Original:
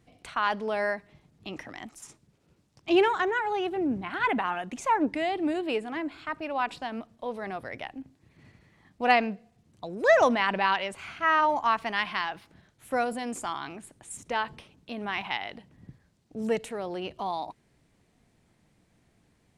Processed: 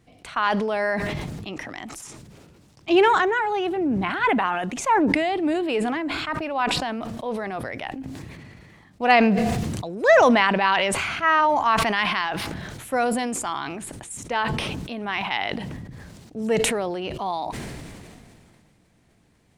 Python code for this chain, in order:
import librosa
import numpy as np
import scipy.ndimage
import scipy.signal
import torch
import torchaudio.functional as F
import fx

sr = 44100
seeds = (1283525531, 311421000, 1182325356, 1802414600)

y = fx.sustainer(x, sr, db_per_s=24.0)
y = y * librosa.db_to_amplitude(4.0)